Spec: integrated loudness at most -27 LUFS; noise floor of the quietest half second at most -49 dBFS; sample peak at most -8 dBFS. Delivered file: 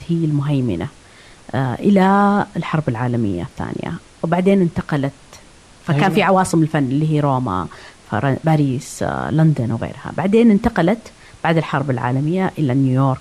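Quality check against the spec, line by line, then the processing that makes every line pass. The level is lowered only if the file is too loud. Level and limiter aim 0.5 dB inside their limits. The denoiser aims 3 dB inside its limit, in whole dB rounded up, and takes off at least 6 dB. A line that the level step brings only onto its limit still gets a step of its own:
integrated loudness -18.0 LUFS: fail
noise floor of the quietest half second -44 dBFS: fail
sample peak -4.0 dBFS: fail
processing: trim -9.5 dB

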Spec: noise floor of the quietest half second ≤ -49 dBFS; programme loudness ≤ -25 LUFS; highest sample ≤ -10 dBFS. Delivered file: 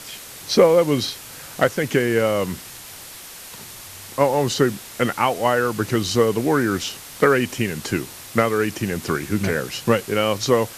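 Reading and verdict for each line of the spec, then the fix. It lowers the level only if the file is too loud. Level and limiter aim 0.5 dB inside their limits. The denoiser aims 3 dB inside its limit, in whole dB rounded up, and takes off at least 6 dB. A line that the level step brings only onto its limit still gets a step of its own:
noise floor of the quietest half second -39 dBFS: fail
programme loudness -20.5 LUFS: fail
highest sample -3.5 dBFS: fail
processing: noise reduction 8 dB, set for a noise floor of -39 dBFS; trim -5 dB; peak limiter -10.5 dBFS

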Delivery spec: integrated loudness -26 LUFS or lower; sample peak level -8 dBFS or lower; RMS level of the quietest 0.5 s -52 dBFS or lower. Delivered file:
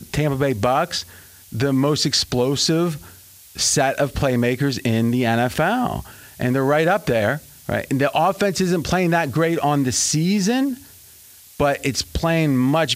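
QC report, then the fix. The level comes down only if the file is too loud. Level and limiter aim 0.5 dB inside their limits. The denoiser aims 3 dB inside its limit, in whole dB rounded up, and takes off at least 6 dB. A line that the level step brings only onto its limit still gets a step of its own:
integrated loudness -19.5 LUFS: fail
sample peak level -5.5 dBFS: fail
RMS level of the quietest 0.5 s -46 dBFS: fail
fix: trim -7 dB

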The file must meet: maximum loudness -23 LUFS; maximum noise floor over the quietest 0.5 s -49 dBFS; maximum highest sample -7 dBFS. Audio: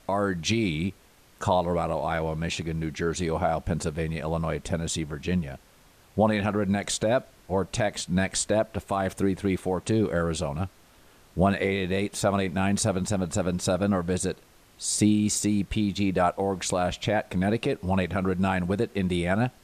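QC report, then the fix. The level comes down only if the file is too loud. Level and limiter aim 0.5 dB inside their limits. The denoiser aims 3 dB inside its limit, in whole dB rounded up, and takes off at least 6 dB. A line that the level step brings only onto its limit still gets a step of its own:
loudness -27.0 LUFS: pass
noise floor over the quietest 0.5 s -56 dBFS: pass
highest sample -10.5 dBFS: pass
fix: none needed

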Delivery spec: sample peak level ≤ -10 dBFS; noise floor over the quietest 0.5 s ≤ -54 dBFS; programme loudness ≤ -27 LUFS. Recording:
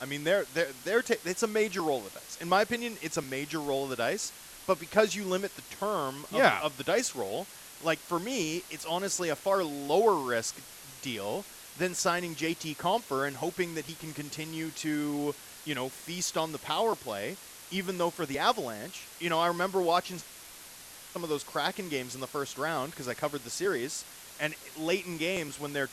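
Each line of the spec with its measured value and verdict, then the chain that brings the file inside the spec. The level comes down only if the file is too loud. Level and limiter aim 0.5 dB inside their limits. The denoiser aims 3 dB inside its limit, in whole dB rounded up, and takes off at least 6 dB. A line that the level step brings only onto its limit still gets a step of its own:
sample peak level -9.0 dBFS: fail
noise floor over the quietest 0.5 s -49 dBFS: fail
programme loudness -31.5 LUFS: pass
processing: noise reduction 8 dB, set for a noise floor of -49 dBFS; peak limiter -10.5 dBFS

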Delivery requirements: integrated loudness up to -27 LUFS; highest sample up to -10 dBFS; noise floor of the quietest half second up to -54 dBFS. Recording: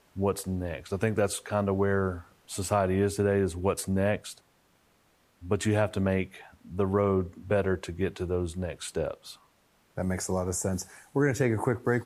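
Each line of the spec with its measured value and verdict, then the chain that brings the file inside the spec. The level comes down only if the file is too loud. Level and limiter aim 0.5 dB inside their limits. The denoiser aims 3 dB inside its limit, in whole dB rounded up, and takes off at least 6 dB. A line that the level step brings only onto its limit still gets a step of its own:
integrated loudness -29.0 LUFS: pass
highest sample -11.0 dBFS: pass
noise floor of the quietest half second -66 dBFS: pass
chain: none needed

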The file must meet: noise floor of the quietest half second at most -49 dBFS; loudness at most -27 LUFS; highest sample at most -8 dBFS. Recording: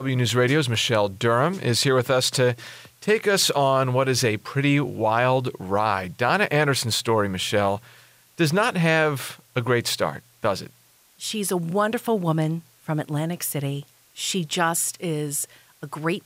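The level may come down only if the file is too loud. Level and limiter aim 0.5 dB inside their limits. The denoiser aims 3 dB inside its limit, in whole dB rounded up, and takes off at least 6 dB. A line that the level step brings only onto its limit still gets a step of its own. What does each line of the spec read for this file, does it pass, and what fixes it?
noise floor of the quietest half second -57 dBFS: pass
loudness -22.5 LUFS: fail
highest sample -6.5 dBFS: fail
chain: trim -5 dB

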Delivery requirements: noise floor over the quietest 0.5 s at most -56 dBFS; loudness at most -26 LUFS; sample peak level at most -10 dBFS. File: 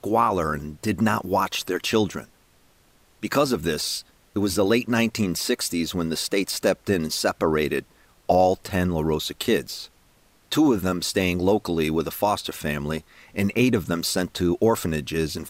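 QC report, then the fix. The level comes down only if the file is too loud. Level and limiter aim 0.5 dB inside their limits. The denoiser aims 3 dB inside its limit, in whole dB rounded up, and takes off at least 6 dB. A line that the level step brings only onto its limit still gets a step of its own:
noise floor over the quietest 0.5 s -58 dBFS: pass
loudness -23.5 LUFS: fail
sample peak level -8.0 dBFS: fail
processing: trim -3 dB

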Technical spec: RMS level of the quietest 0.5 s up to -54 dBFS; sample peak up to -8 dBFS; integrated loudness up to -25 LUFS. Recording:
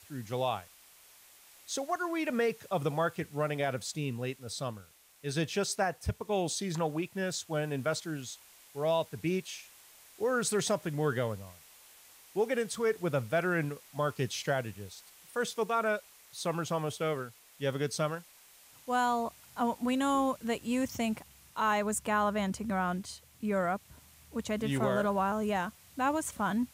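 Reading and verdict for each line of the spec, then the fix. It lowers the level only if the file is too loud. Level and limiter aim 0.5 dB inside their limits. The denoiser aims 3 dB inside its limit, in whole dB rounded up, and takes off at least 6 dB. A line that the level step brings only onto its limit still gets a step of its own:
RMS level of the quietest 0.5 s -58 dBFS: pass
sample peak -18.5 dBFS: pass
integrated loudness -33.0 LUFS: pass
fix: none needed

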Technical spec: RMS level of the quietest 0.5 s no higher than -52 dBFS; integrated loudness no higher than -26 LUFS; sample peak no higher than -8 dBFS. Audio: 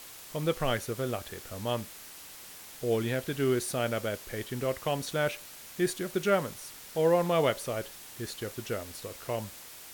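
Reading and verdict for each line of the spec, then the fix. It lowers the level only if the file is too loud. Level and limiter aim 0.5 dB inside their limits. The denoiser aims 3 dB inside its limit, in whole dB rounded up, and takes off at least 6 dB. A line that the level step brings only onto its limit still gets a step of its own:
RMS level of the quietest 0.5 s -48 dBFS: fail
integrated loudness -31.5 LUFS: pass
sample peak -13.5 dBFS: pass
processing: noise reduction 7 dB, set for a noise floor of -48 dBFS

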